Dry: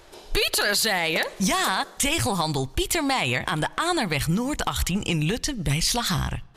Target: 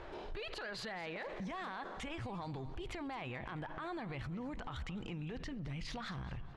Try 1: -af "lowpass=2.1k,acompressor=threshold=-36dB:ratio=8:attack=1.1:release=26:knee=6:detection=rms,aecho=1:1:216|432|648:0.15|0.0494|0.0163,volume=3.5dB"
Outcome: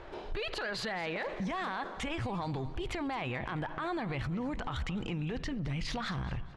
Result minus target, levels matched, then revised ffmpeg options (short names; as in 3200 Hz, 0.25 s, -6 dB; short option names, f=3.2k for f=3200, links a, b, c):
compressor: peak gain reduction -7.5 dB
-af "lowpass=2.1k,acompressor=threshold=-44.5dB:ratio=8:attack=1.1:release=26:knee=6:detection=rms,aecho=1:1:216|432|648:0.15|0.0494|0.0163,volume=3.5dB"